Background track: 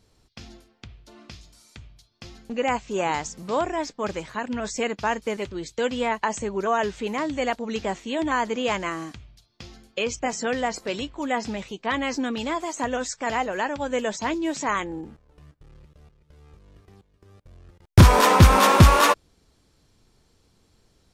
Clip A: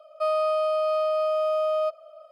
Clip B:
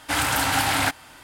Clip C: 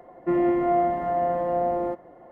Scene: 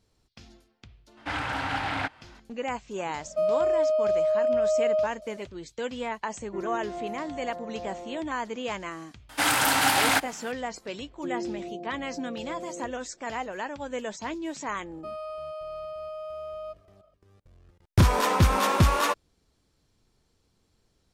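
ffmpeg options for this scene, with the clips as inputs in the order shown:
-filter_complex "[2:a]asplit=2[s0][s1];[1:a]asplit=2[s2][s3];[3:a]asplit=2[s4][s5];[0:a]volume=0.422[s6];[s0]lowpass=2900[s7];[s2]lowshelf=f=750:t=q:w=3:g=7.5[s8];[s1]highpass=170[s9];[s5]asuperpass=centerf=260:order=8:qfactor=0.56[s10];[s7]atrim=end=1.23,asetpts=PTS-STARTPTS,volume=0.473,afade=t=in:d=0.004:c=hsin,afade=t=out:st=1.226:d=0.004:c=hsin,adelay=1170[s11];[s8]atrim=end=2.31,asetpts=PTS-STARTPTS,volume=0.282,afade=t=in:d=0.004:c=hsin,afade=t=out:st=2.306:d=0.004:c=hsin,adelay=3160[s12];[s4]atrim=end=2.31,asetpts=PTS-STARTPTS,volume=0.188,afade=t=in:d=0.004:c=hsin,afade=t=out:st=2.306:d=0.004:c=hsin,adelay=276066S[s13];[s9]atrim=end=1.23,asetpts=PTS-STARTPTS,afade=t=in:d=0.004:c=hsin,afade=t=out:st=1.226:d=0.004:c=hsin,adelay=9290[s14];[s10]atrim=end=2.31,asetpts=PTS-STARTPTS,volume=0.266,afade=t=in:d=0.004:c=hsin,afade=t=out:st=2.306:d=0.004:c=hsin,adelay=10960[s15];[s3]atrim=end=2.31,asetpts=PTS-STARTPTS,volume=0.224,afade=t=in:d=0.004:c=hsin,afade=t=out:st=2.306:d=0.004:c=hsin,adelay=14830[s16];[s6][s11][s12][s13][s14][s15][s16]amix=inputs=7:normalize=0"

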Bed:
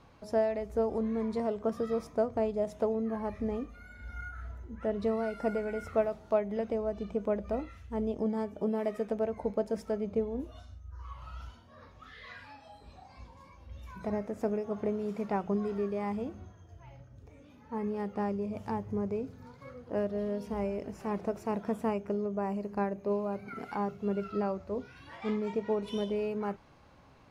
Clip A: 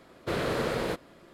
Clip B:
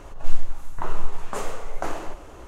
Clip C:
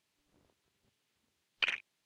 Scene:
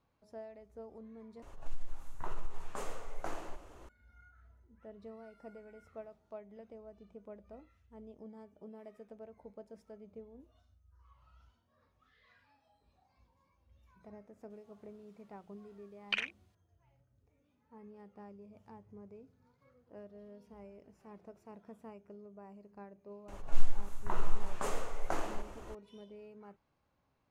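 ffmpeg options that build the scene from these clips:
-filter_complex "[2:a]asplit=2[s0][s1];[0:a]volume=0.106[s2];[s0]acompressor=threshold=0.2:ratio=6:attack=3.2:release=140:knee=1:detection=peak[s3];[s2]asplit=2[s4][s5];[s4]atrim=end=1.424[s6];[s3]atrim=end=2.47,asetpts=PTS-STARTPTS,volume=0.266[s7];[s5]atrim=start=3.886[s8];[3:a]atrim=end=2.05,asetpts=PTS-STARTPTS,volume=0.794,afade=t=in:d=0.004:c=hsin,afade=t=out:st=2.046:d=0.004:c=hsin,adelay=14500[s9];[s1]atrim=end=2.47,asetpts=PTS-STARTPTS,volume=0.473,afade=t=in:d=0.004:c=hsin,afade=t=out:st=2.466:d=0.004:c=hsin,adelay=23280[s10];[s6][s7]acrossfade=d=0.004:c1=hsin:c2=hsin[s11];[s11][s8]acrossfade=d=0.004:c1=hsin:c2=hsin[s12];[s12][s9][s10]amix=inputs=3:normalize=0"

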